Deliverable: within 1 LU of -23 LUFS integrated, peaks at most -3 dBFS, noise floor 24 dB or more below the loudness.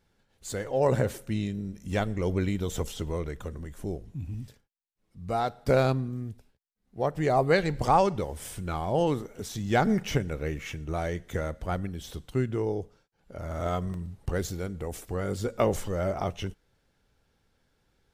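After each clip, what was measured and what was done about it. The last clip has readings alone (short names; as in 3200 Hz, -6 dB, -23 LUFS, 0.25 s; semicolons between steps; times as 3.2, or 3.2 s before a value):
dropouts 2; longest dropout 1.3 ms; loudness -29.5 LUFS; peak -10.5 dBFS; loudness target -23.0 LUFS
-> interpolate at 1.09/13.94, 1.3 ms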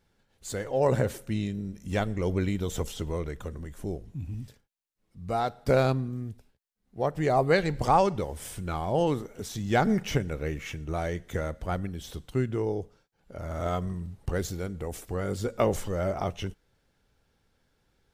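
dropouts 0; loudness -29.5 LUFS; peak -10.5 dBFS; loudness target -23.0 LUFS
-> gain +6.5 dB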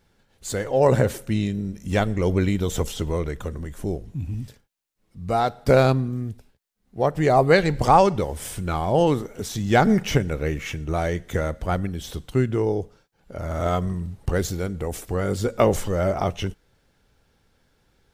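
loudness -23.0 LUFS; peak -4.0 dBFS; noise floor -67 dBFS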